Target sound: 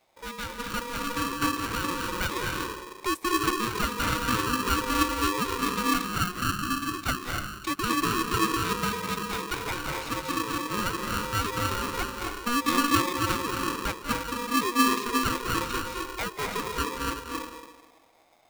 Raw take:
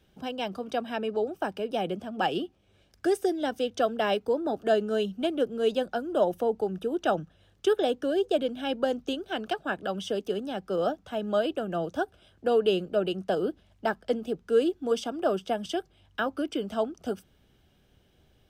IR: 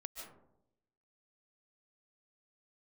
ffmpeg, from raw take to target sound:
-filter_complex "[0:a]asettb=1/sr,asplit=3[a][b][c];[a]atrim=end=5.664[d];[b]atrim=start=5.66:end=7.78,asetpts=PTS-STARTPTS,afade=t=in:d=0.004:c=qsin,afade=t=out:st=2.116:d=0.004:c=qsin,highpass=f=430:w=0.5412,highpass=f=430:w=1.3066[e];[c]atrim=start=7.776[f];[d][e]acrossfade=d=0.004:c1=hsin:c2=qsin[g];[g][f]acrossfade=d=0.004:c1=qsin:c2=hsin[h];[1:a]atrim=start_sample=2205,asetrate=28665,aresample=44100[i];[h][i]afir=irnorm=-1:irlink=0,aeval=exprs='val(0)*sgn(sin(2*PI*720*n/s))':c=same"

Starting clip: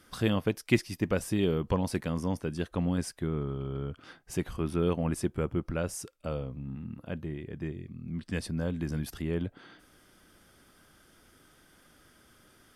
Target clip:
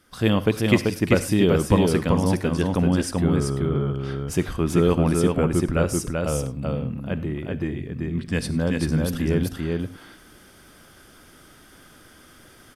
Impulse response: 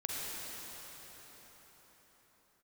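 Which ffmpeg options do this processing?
-filter_complex "[0:a]dynaudnorm=f=140:g=3:m=10dB,aecho=1:1:386:0.708,asplit=2[a][b];[1:a]atrim=start_sample=2205,afade=t=out:st=0.16:d=0.01,atrim=end_sample=7497[c];[b][c]afir=irnorm=-1:irlink=0,volume=-9dB[d];[a][d]amix=inputs=2:normalize=0,volume=-3.5dB"

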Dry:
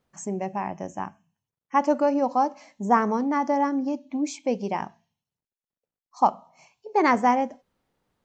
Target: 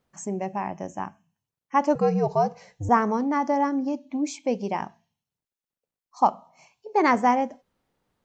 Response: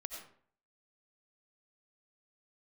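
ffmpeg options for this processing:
-filter_complex "[0:a]asettb=1/sr,asplit=3[a][b][c];[a]atrim=end=1.954[d];[b]atrim=start=1.95:end=2.89,asetpts=PTS-STARTPTS,afade=t=in:d=0.004:c=qsin,afade=t=out:st=0.936:d=0.004:c=qsin,afreqshift=-98[e];[c]atrim=start=2.886[f];[d][e]acrossfade=d=0.004:c1=hsin:c2=qsin[g];[g][f]acrossfade=d=0.004:c1=qsin:c2=hsin"

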